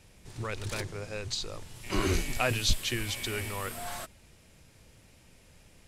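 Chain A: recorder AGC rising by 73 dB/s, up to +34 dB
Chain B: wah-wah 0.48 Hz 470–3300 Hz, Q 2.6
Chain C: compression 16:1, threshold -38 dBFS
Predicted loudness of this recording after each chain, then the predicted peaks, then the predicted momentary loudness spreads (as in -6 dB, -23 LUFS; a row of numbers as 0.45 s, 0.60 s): -29.0 LUFS, -40.5 LUFS, -43.0 LUFS; -11.5 dBFS, -19.0 dBFS, -25.5 dBFS; 4 LU, 17 LU, 17 LU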